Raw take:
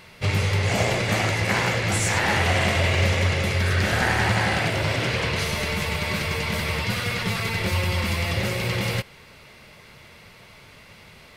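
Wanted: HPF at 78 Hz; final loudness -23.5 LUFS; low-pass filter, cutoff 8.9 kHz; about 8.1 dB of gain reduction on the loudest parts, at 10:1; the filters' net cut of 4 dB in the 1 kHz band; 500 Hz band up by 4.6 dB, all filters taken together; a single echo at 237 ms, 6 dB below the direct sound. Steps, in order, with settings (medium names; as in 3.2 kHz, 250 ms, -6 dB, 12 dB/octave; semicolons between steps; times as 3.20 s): high-pass 78 Hz; low-pass 8.9 kHz; peaking EQ 500 Hz +8 dB; peaking EQ 1 kHz -9 dB; compression 10:1, threshold -25 dBFS; delay 237 ms -6 dB; trim +4.5 dB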